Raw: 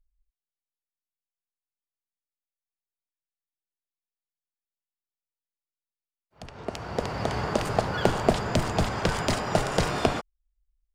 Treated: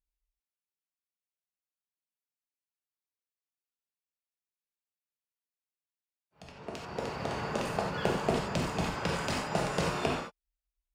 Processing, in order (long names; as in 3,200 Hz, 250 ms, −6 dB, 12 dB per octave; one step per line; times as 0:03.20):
high-pass filter 47 Hz
parametric band 2,600 Hz +5.5 dB 0.23 octaves
reverb whose tail is shaped and stops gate 110 ms flat, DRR −1 dB
level −9 dB